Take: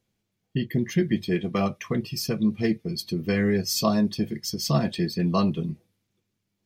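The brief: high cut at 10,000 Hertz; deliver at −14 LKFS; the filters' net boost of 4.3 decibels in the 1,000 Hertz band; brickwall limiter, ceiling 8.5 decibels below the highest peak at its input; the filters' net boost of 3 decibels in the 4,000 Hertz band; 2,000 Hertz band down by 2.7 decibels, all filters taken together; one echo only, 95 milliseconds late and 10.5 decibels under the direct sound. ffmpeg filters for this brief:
ffmpeg -i in.wav -af "lowpass=10000,equalizer=frequency=1000:width_type=o:gain=7,equalizer=frequency=2000:width_type=o:gain=-6.5,equalizer=frequency=4000:width_type=o:gain=5,alimiter=limit=-15.5dB:level=0:latency=1,aecho=1:1:95:0.299,volume=12dB" out.wav

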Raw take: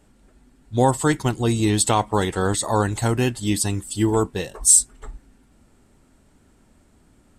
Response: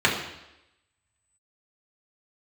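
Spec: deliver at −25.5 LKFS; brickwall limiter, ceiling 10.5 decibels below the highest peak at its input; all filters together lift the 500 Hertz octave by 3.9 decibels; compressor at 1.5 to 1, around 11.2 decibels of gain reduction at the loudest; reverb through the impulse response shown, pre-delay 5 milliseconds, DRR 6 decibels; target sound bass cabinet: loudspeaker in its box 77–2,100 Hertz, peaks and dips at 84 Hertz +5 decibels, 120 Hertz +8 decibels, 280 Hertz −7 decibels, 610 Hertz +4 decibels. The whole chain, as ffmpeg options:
-filter_complex "[0:a]equalizer=frequency=500:width_type=o:gain=4,acompressor=threshold=-42dB:ratio=1.5,alimiter=limit=-24dB:level=0:latency=1,asplit=2[link_01][link_02];[1:a]atrim=start_sample=2205,adelay=5[link_03];[link_02][link_03]afir=irnorm=-1:irlink=0,volume=-24dB[link_04];[link_01][link_04]amix=inputs=2:normalize=0,highpass=frequency=77:width=0.5412,highpass=frequency=77:width=1.3066,equalizer=frequency=84:width_type=q:width=4:gain=5,equalizer=frequency=120:width_type=q:width=4:gain=8,equalizer=frequency=280:width_type=q:width=4:gain=-7,equalizer=frequency=610:width_type=q:width=4:gain=4,lowpass=frequency=2100:width=0.5412,lowpass=frequency=2100:width=1.3066,volume=6dB"

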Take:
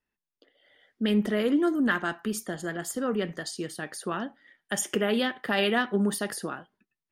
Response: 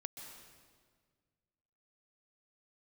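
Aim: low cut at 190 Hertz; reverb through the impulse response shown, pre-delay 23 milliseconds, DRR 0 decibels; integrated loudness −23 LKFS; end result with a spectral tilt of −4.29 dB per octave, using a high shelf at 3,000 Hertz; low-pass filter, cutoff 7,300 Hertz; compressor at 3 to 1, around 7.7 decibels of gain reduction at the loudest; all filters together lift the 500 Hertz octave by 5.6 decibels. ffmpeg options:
-filter_complex "[0:a]highpass=190,lowpass=7300,equalizer=frequency=500:width_type=o:gain=7.5,highshelf=frequency=3000:gain=-8.5,acompressor=threshold=-28dB:ratio=3,asplit=2[link_01][link_02];[1:a]atrim=start_sample=2205,adelay=23[link_03];[link_02][link_03]afir=irnorm=-1:irlink=0,volume=3dB[link_04];[link_01][link_04]amix=inputs=2:normalize=0,volume=6.5dB"

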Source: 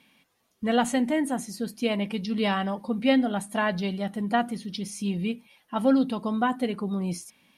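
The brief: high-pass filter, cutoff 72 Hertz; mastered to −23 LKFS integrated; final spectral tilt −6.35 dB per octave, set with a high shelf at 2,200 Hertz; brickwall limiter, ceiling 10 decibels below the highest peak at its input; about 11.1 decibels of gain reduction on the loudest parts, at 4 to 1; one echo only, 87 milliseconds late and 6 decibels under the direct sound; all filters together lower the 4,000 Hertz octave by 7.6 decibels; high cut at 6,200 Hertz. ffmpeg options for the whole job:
ffmpeg -i in.wav -af "highpass=72,lowpass=6200,highshelf=frequency=2200:gain=-4.5,equalizer=frequency=4000:width_type=o:gain=-6.5,acompressor=threshold=-31dB:ratio=4,alimiter=level_in=6dB:limit=-24dB:level=0:latency=1,volume=-6dB,aecho=1:1:87:0.501,volume=14.5dB" out.wav

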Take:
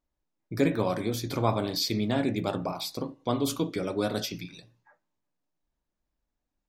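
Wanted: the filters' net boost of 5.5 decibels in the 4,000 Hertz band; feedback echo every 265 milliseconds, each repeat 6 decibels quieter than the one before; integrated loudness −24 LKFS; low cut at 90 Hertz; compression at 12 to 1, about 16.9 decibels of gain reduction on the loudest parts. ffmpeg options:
ffmpeg -i in.wav -af "highpass=90,equalizer=frequency=4000:width_type=o:gain=6.5,acompressor=threshold=-36dB:ratio=12,aecho=1:1:265|530|795|1060|1325|1590:0.501|0.251|0.125|0.0626|0.0313|0.0157,volume=16dB" out.wav

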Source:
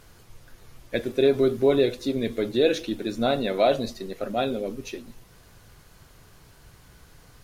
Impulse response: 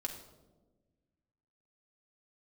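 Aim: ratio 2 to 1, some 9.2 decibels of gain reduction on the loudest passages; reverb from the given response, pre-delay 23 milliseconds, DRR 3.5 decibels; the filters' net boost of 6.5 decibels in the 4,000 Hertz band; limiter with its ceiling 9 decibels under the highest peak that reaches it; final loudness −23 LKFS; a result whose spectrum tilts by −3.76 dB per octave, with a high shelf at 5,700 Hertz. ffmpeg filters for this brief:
-filter_complex "[0:a]equalizer=frequency=4000:width_type=o:gain=8.5,highshelf=frequency=5700:gain=-4.5,acompressor=threshold=-32dB:ratio=2,alimiter=level_in=0.5dB:limit=-24dB:level=0:latency=1,volume=-0.5dB,asplit=2[link_01][link_02];[1:a]atrim=start_sample=2205,adelay=23[link_03];[link_02][link_03]afir=irnorm=-1:irlink=0,volume=-3.5dB[link_04];[link_01][link_04]amix=inputs=2:normalize=0,volume=10.5dB"

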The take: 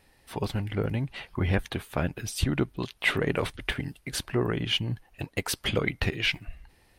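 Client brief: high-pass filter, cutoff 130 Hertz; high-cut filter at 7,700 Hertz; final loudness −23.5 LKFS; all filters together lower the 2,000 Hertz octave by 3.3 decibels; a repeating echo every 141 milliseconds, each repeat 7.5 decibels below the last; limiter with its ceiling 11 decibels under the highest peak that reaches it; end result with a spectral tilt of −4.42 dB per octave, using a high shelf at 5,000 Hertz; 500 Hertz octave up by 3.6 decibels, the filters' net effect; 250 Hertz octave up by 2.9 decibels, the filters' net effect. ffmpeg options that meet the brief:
ffmpeg -i in.wav -af "highpass=130,lowpass=7700,equalizer=frequency=250:width_type=o:gain=3.5,equalizer=frequency=500:width_type=o:gain=3.5,equalizer=frequency=2000:width_type=o:gain=-3,highshelf=frequency=5000:gain=-6.5,alimiter=limit=-20dB:level=0:latency=1,aecho=1:1:141|282|423|564|705:0.422|0.177|0.0744|0.0312|0.0131,volume=9dB" out.wav

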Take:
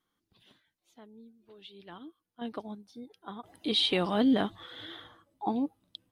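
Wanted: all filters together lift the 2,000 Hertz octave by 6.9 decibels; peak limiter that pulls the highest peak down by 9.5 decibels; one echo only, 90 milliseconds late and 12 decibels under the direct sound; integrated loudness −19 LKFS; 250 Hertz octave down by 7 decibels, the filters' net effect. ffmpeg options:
ffmpeg -i in.wav -af "equalizer=frequency=250:width_type=o:gain=-8,equalizer=frequency=2000:width_type=o:gain=9,alimiter=limit=-22.5dB:level=0:latency=1,aecho=1:1:90:0.251,volume=17dB" out.wav

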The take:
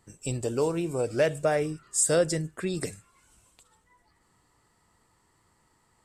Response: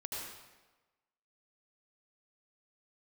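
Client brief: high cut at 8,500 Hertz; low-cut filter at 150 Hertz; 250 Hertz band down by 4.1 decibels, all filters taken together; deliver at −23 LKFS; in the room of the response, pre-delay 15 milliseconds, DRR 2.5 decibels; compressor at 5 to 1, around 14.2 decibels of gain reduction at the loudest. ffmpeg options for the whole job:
-filter_complex "[0:a]highpass=150,lowpass=8500,equalizer=frequency=250:width_type=o:gain=-5.5,acompressor=threshold=-36dB:ratio=5,asplit=2[link_01][link_02];[1:a]atrim=start_sample=2205,adelay=15[link_03];[link_02][link_03]afir=irnorm=-1:irlink=0,volume=-3.5dB[link_04];[link_01][link_04]amix=inputs=2:normalize=0,volume=15dB"

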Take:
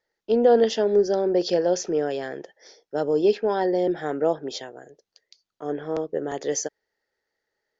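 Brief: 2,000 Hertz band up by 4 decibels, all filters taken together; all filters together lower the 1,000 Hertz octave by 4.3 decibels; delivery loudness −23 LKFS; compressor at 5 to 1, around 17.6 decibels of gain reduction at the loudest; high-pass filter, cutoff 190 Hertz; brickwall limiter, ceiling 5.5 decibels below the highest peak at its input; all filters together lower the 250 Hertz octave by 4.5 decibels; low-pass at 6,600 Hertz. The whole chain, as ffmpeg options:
ffmpeg -i in.wav -af "highpass=190,lowpass=6600,equalizer=frequency=250:width_type=o:gain=-5,equalizer=frequency=1000:width_type=o:gain=-8,equalizer=frequency=2000:width_type=o:gain=8,acompressor=threshold=-36dB:ratio=5,volume=17.5dB,alimiter=limit=-13dB:level=0:latency=1" out.wav

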